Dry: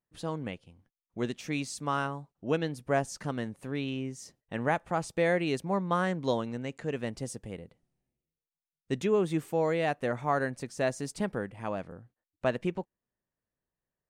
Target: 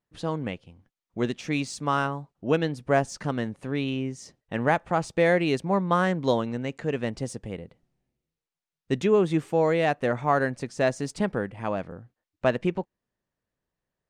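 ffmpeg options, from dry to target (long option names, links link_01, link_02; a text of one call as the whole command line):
ffmpeg -i in.wav -af "adynamicsmooth=sensitivity=5:basefreq=7600,volume=5.5dB" out.wav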